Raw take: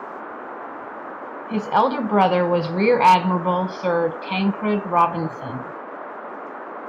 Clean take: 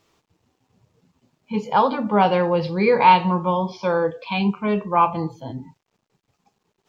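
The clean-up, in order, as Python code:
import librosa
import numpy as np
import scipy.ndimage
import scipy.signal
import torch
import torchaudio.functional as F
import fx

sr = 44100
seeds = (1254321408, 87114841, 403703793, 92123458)

y = fx.fix_declip(x, sr, threshold_db=-7.0)
y = fx.notch(y, sr, hz=590.0, q=30.0)
y = fx.noise_reduce(y, sr, print_start_s=5.73, print_end_s=6.23, reduce_db=30.0)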